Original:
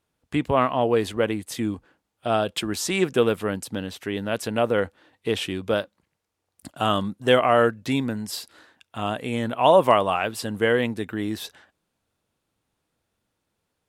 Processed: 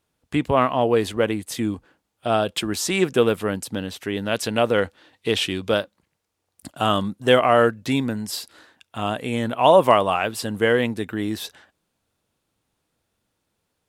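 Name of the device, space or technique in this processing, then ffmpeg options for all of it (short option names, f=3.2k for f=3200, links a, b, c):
exciter from parts: -filter_complex "[0:a]asettb=1/sr,asplit=3[a][b][c];[a]atrim=end=4.254[d];[b]atrim=start=4.25:end=5.78,asetpts=PTS-STARTPTS,afade=t=in:d=0.004:c=qsin,afade=t=out:st=1.526:d=0.004:c=qsin,equalizer=f=4.2k:t=o:w=2:g=5[e];[c]atrim=start=5.776[f];[d][e]acrossfade=d=0.004:c1=hsin:c2=qsin[g];[g][f]acrossfade=d=0.004:c1=qsin:c2=hsin,asplit=2[h][i];[i]highpass=2.3k,asoftclip=type=tanh:threshold=-35dB,volume=-13.5dB[j];[h][j]amix=inputs=2:normalize=0,volume=2dB"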